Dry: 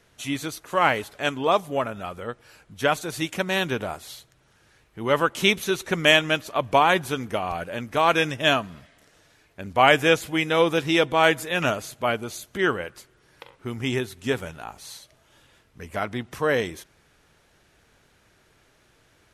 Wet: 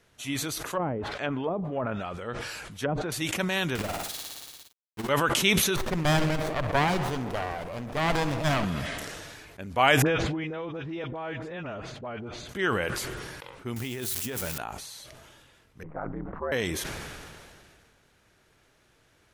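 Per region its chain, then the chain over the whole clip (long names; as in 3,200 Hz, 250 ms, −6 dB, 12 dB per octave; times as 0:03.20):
0:00.70–0:03.12: treble cut that deepens with the level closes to 390 Hz, closed at −17.5 dBFS + one half of a high-frequency compander encoder only
0:03.75–0:05.09: log-companded quantiser 2 bits + amplitude modulation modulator 20 Hz, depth 70% + flutter between parallel walls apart 9.9 metres, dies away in 0.55 s
0:05.76–0:08.65: feedback echo with a low-pass in the loop 66 ms, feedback 81%, low-pass 2,600 Hz, level −17 dB + windowed peak hold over 17 samples
0:10.02–0:12.49: head-to-tape spacing loss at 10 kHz 35 dB + downward compressor 3 to 1, threshold −31 dBFS + all-pass dispersion highs, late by 43 ms, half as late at 1,200 Hz
0:13.76–0:14.58: spike at every zero crossing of −24.5 dBFS + compressor whose output falls as the input rises −30 dBFS
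0:15.83–0:16.52: variable-slope delta modulation 64 kbit/s + low-pass filter 1,300 Hz 24 dB per octave + ring modulation 76 Hz
whole clip: dynamic equaliser 440 Hz, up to −3 dB, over −29 dBFS, Q 0.76; level that may fall only so fast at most 26 dB per second; level −3.5 dB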